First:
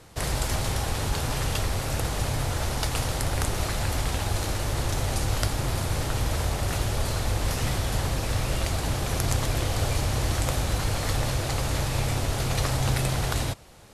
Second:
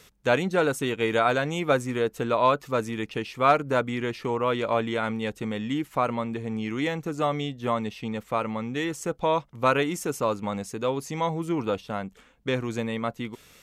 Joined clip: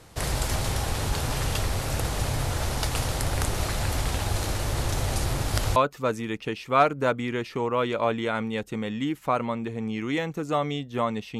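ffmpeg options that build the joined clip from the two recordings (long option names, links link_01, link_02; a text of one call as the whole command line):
ffmpeg -i cue0.wav -i cue1.wav -filter_complex "[0:a]apad=whole_dur=11.39,atrim=end=11.39,asplit=2[link_01][link_02];[link_01]atrim=end=5.252[link_03];[link_02]atrim=start=5.248:end=5.762,asetpts=PTS-STARTPTS,areverse[link_04];[1:a]atrim=start=2.448:end=8.08[link_05];[link_03][link_04]acrossfade=duration=0.004:curve1=hsin:curve2=hsin[link_06];[link_06][link_05]acrossfade=duration=0.004:curve1=hsin:curve2=hsin" out.wav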